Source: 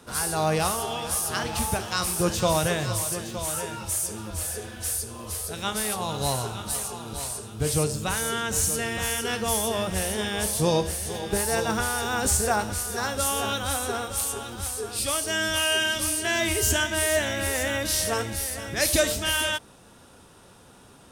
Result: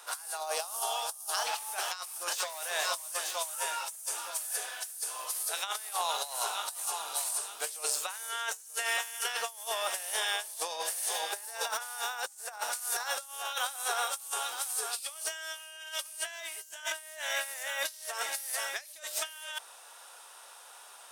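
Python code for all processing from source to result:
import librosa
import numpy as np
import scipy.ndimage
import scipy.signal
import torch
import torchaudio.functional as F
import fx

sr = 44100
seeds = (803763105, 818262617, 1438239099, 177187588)

y = fx.chain(x, sr, fx.highpass(hz=400.0, slope=12),
    fx.peak_eq(hz=2000.0, db=-11.5, octaves=1.2), at=(0.4, 1.47))
y = fx.chain(y, sr, fx.highpass(hz=280.0, slope=12),
    fx.clip_hard(threshold_db=-21.5), at=(2.33, 5.26))
y = scipy.signal.sosfilt(scipy.signal.butter(4, 690.0, 'highpass', fs=sr, output='sos'), y)
y = fx.high_shelf(y, sr, hz=9200.0, db=7.0)
y = fx.over_compress(y, sr, threshold_db=-32.0, ratio=-0.5)
y = y * librosa.db_to_amplitude(-3.0)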